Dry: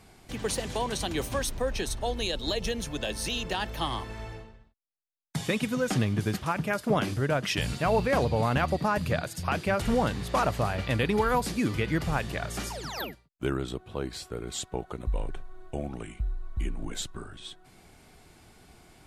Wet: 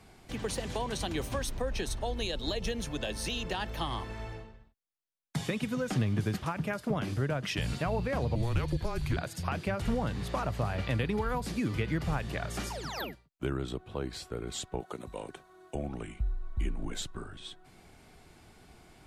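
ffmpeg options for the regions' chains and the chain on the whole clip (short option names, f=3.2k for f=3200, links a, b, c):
-filter_complex "[0:a]asettb=1/sr,asplit=3[a][b][c];[a]atrim=end=8.354[d];[b]atrim=start=8.35:end=9.17,asetpts=PTS-STARTPTS,afade=t=in:d=0.004:c=qsin,afade=t=out:st=0.816:d=0.004:c=qsin,acrossover=split=480|3000[e][f][g];[f]acompressor=threshold=-39dB:ratio=3:attack=3.2:release=140:knee=2.83:detection=peak[h];[e][h][g]amix=inputs=3:normalize=0,afreqshift=-230[i];[c]atrim=start=9.166[j];[d][i]acrossfade=d=0.004:c1=hsin:c2=qsin[k];[k][j]acrossfade=d=0.004:c1=qsin:c2=hsin,asettb=1/sr,asplit=3[l][m][n];[l]atrim=end=14.804[o];[m]atrim=start=14.8:end=15.75,asetpts=PTS-STARTPTS,afade=t=in:d=0.004:c=qsin,afade=t=out:st=0.946:d=0.004:c=qsin,highpass=160,bass=f=250:g=-2,treble=f=4k:g=8[p];[n]atrim=start=15.746[q];[o][p]acrossfade=d=0.004:c1=hsin:c2=qsin[r];[r][q]acrossfade=d=0.004:c1=qsin:c2=hsin,highshelf=f=5.7k:g=-4.5,acrossover=split=170[s][t];[t]acompressor=threshold=-30dB:ratio=4[u];[s][u]amix=inputs=2:normalize=0,volume=-1dB"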